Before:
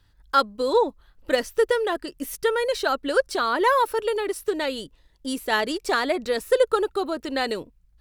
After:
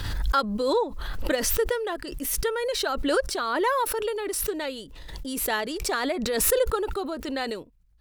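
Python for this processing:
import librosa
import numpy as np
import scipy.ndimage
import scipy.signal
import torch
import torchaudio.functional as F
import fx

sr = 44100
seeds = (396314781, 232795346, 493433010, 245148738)

y = fx.pre_swell(x, sr, db_per_s=31.0)
y = y * librosa.db_to_amplitude(-5.0)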